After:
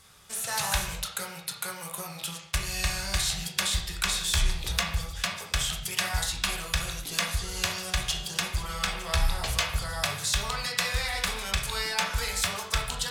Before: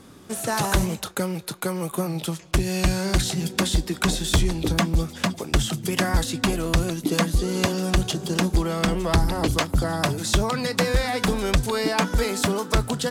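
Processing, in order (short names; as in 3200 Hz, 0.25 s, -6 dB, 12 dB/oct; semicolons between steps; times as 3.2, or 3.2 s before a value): passive tone stack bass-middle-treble 10-0-10; negative-ratio compressor -24 dBFS; reverb, pre-delay 6 ms, DRR 0 dB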